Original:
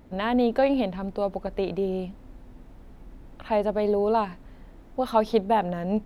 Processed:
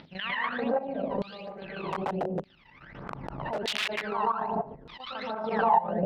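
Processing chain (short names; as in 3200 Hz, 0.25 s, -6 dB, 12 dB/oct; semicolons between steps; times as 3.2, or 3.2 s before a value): elliptic low-pass 5300 Hz; low shelf 270 Hz +3.5 dB; notches 60/120/180/240 Hz; plate-style reverb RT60 0.88 s, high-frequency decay 0.85×, pre-delay 0.11 s, DRR -9 dB; phaser 1.3 Hz, delay 1.1 ms, feedback 77%; chopper 6.8 Hz, depth 65%, duty 35%; compressor 5:1, threshold -18 dBFS, peak gain reduction 19 dB; 1.92–4.08 wrapped overs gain 17 dB; bell 160 Hz +11.5 dB 0.64 oct; LFO band-pass saw down 0.82 Hz 450–3800 Hz; gate -58 dBFS, range -22 dB; backwards sustainer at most 44 dB/s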